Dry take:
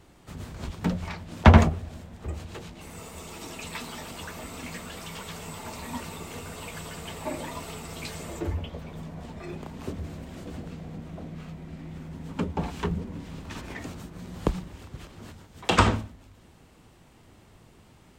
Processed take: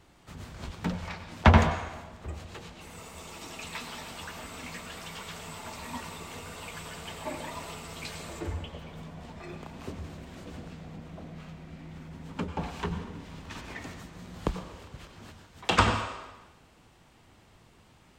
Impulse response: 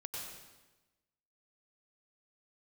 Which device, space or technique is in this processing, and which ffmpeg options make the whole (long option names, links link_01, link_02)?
filtered reverb send: -filter_complex "[0:a]asplit=2[link_01][link_02];[link_02]highpass=570,lowpass=8100[link_03];[1:a]atrim=start_sample=2205[link_04];[link_03][link_04]afir=irnorm=-1:irlink=0,volume=-1.5dB[link_05];[link_01][link_05]amix=inputs=2:normalize=0,volume=-4.5dB"